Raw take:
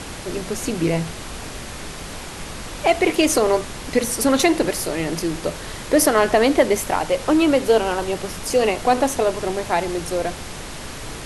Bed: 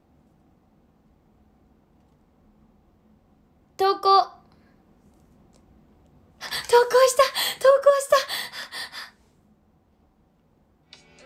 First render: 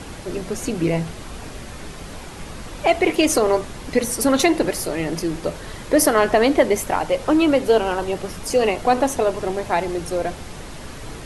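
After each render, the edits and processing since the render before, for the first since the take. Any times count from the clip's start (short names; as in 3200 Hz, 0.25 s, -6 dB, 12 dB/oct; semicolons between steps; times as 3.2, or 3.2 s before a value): denoiser 6 dB, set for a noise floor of -34 dBFS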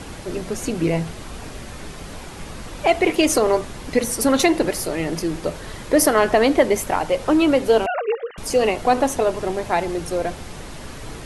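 7.86–8.38 sine-wave speech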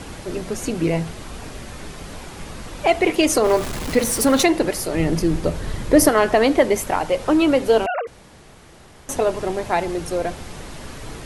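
3.44–4.43 zero-crossing step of -25.5 dBFS; 4.94–6.09 low shelf 250 Hz +10.5 dB; 8.07–9.09 room tone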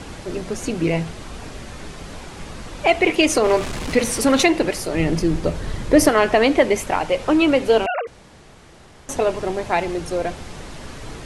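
LPF 9100 Hz 12 dB/oct; dynamic EQ 2500 Hz, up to +5 dB, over -38 dBFS, Q 2.2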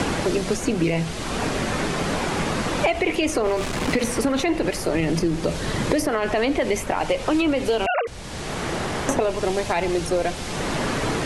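limiter -12.5 dBFS, peak gain reduction 10 dB; three-band squash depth 100%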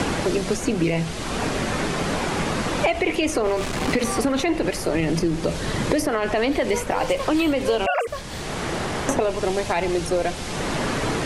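add bed -14.5 dB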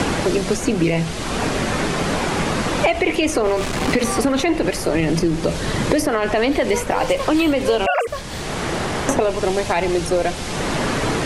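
gain +3.5 dB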